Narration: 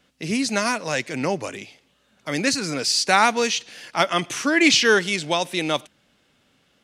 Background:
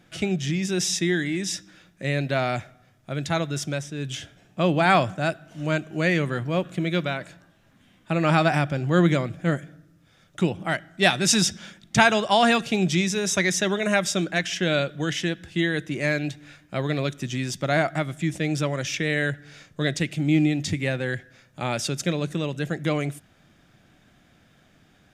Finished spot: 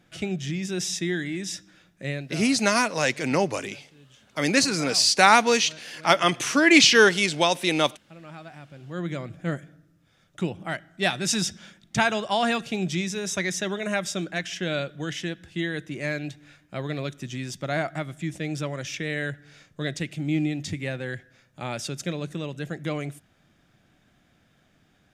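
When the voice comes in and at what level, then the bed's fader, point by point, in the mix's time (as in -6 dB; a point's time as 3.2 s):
2.10 s, +1.0 dB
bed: 2.1 s -4 dB
2.51 s -23 dB
8.56 s -23 dB
9.36 s -5 dB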